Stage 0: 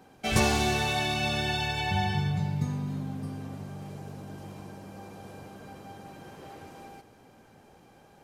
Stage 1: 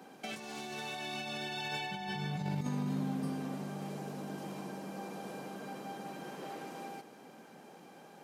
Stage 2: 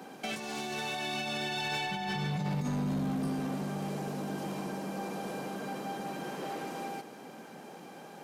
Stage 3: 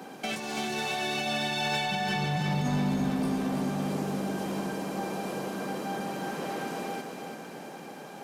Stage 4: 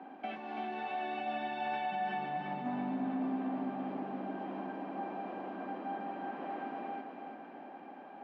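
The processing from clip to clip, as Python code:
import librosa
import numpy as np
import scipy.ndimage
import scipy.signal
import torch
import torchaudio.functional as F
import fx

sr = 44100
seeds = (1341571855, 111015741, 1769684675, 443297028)

y1 = scipy.signal.sosfilt(scipy.signal.butter(6, 160.0, 'highpass', fs=sr, output='sos'), x)
y1 = fx.over_compress(y1, sr, threshold_db=-36.0, ratio=-1.0)
y1 = y1 * 10.0 ** (-2.0 / 20.0)
y2 = 10.0 ** (-33.5 / 20.0) * np.tanh(y1 / 10.0 ** (-33.5 / 20.0))
y2 = y2 * 10.0 ** (6.5 / 20.0)
y3 = fx.echo_feedback(y2, sr, ms=333, feedback_pct=55, wet_db=-6.5)
y3 = y3 * 10.0 ** (3.5 / 20.0)
y4 = fx.cabinet(y3, sr, low_hz=230.0, low_slope=24, high_hz=2500.0, hz=(270.0, 460.0, 740.0, 1400.0, 2200.0), db=(5, -8, 6, -3, -4))
y4 = y4 * 10.0 ** (-7.0 / 20.0)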